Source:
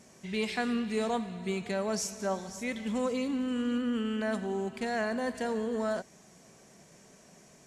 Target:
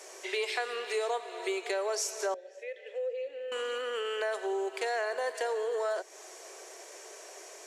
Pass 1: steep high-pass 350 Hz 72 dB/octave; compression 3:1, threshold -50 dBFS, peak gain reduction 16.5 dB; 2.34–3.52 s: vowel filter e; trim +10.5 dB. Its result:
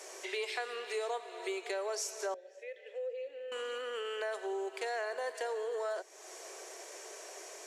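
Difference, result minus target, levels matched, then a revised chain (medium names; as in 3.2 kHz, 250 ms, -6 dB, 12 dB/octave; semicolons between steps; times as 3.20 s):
compression: peak gain reduction +4.5 dB
steep high-pass 350 Hz 72 dB/octave; compression 3:1, threshold -43 dBFS, peak gain reduction 12 dB; 2.34–3.52 s: vowel filter e; trim +10.5 dB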